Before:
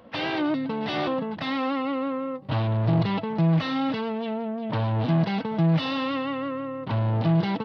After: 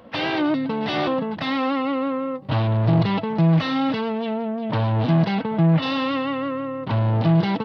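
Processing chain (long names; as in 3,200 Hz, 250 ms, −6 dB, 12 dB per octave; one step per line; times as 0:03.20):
0:05.34–0:05.81: low-pass filter 3,900 Hz → 2,500 Hz 12 dB per octave
level +4 dB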